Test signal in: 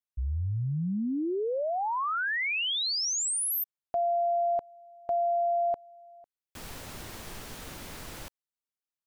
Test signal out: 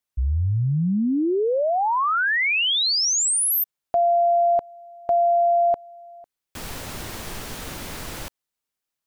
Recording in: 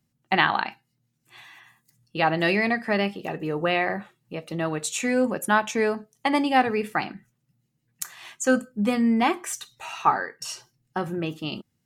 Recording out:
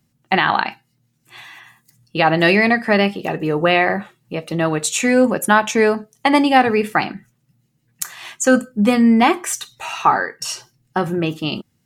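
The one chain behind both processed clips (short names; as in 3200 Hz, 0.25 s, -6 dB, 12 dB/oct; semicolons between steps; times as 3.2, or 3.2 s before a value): maximiser +10 dB; gain -1.5 dB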